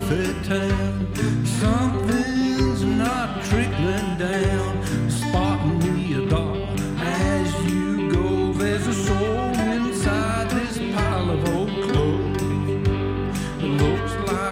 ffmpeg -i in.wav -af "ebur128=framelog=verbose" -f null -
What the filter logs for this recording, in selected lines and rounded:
Integrated loudness:
  I:         -22.4 LUFS
  Threshold: -32.4 LUFS
Loudness range:
  LRA:         1.0 LU
  Threshold: -42.4 LUFS
  LRA low:   -22.8 LUFS
  LRA high:  -21.8 LUFS